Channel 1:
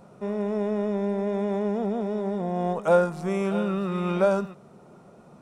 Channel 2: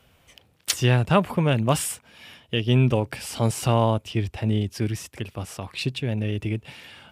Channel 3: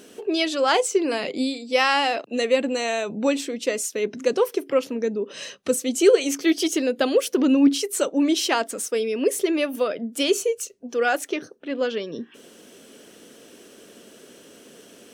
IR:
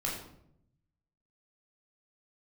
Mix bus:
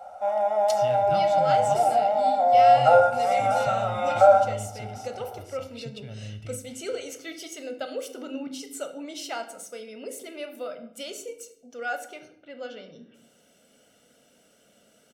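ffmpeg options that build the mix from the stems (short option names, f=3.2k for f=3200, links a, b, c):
-filter_complex "[0:a]highpass=f=730:t=q:w=7.4,aecho=1:1:3.7:0.72,volume=-5dB,asplit=2[a][b];[b]volume=-7.5dB[c];[1:a]equalizer=f=5.1k:w=1.5:g=7,volume=-18dB,asplit=2[d][e];[e]volume=-12.5dB[f];[2:a]adelay=800,volume=-16.5dB,asplit=2[g][h];[h]volume=-7dB[i];[a][d]amix=inputs=2:normalize=0,acompressor=threshold=-25dB:ratio=6,volume=0dB[j];[3:a]atrim=start_sample=2205[k];[c][f][i]amix=inputs=3:normalize=0[l];[l][k]afir=irnorm=-1:irlink=0[m];[g][j][m]amix=inputs=3:normalize=0,aecho=1:1:1.4:0.62"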